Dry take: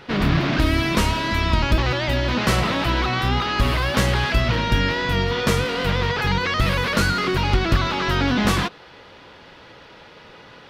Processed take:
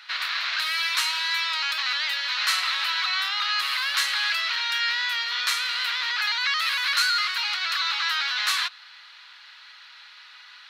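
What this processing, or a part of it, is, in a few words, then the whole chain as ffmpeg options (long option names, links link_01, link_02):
headphones lying on a table: -af "highpass=frequency=1300:width=0.5412,highpass=frequency=1300:width=1.3066,equalizer=frequency=4100:width_type=o:width=0.2:gain=10"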